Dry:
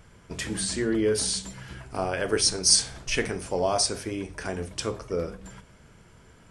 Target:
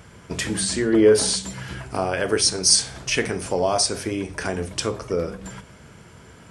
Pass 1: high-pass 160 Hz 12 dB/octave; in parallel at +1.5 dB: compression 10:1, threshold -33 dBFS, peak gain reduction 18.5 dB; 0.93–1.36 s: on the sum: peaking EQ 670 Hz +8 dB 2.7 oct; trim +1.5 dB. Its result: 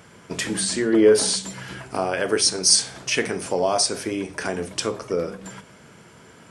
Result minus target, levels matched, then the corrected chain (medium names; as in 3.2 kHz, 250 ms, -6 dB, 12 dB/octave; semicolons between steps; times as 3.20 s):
125 Hz band -5.0 dB
high-pass 65 Hz 12 dB/octave; in parallel at +1.5 dB: compression 10:1, threshold -33 dBFS, peak gain reduction 18.5 dB; 0.93–1.36 s: on the sum: peaking EQ 670 Hz +8 dB 2.7 oct; trim +1.5 dB